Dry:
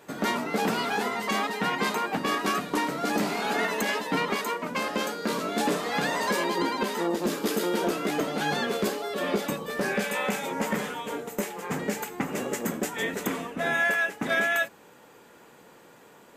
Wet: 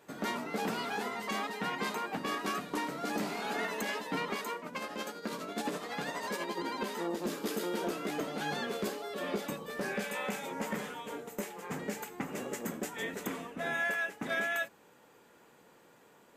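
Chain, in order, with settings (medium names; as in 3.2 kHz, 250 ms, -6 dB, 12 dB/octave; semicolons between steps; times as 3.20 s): 4.59–6.69 s: tremolo 12 Hz, depth 49%; trim -8 dB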